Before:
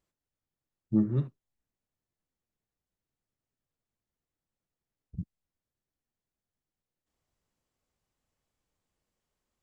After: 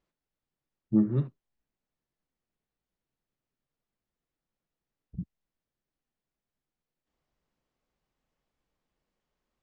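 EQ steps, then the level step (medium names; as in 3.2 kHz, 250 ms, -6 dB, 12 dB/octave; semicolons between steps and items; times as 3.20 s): distance through air 120 m; peaking EQ 91 Hz -14 dB 0.35 oct; +2.5 dB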